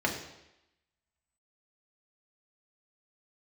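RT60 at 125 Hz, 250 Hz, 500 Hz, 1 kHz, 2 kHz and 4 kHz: 0.80, 0.85, 0.90, 0.90, 0.90, 0.90 s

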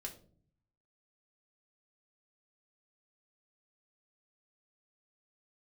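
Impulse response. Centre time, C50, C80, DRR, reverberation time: 13 ms, 12.0 dB, 16.0 dB, 0.5 dB, 0.50 s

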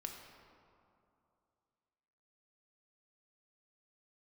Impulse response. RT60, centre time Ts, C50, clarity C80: 2.7 s, 61 ms, 4.0 dB, 5.5 dB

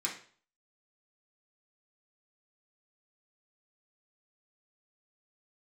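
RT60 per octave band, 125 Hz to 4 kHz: 0.50, 0.45, 0.45, 0.45, 0.45, 0.45 s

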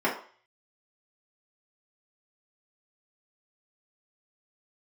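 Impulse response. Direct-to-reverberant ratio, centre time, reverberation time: -6.5 dB, 25 ms, 0.45 s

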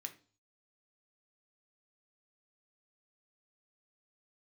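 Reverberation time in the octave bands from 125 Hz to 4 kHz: 0.65, 0.45, 0.40, 0.40, 0.35, 0.45 s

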